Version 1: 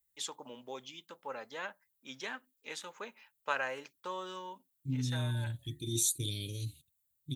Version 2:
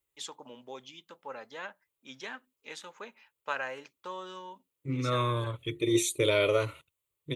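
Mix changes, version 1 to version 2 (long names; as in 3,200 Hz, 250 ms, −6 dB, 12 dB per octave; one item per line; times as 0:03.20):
second voice: remove Chebyshev band-stop filter 240–4,100 Hz, order 3
master: add high-shelf EQ 9,800 Hz −9 dB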